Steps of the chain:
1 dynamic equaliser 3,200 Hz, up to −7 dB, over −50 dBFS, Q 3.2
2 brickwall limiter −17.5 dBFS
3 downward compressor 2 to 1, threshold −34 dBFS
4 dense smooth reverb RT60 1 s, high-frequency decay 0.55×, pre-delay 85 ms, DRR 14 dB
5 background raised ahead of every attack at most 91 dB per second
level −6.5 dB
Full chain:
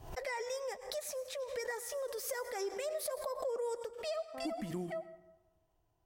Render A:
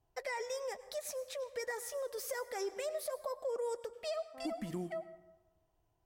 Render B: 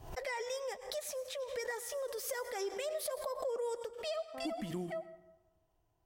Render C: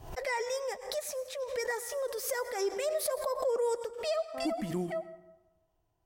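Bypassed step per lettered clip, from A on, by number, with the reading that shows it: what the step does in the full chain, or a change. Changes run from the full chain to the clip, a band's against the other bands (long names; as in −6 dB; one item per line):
5, change in crest factor −4.0 dB
1, 4 kHz band +1.5 dB
3, average gain reduction 5.0 dB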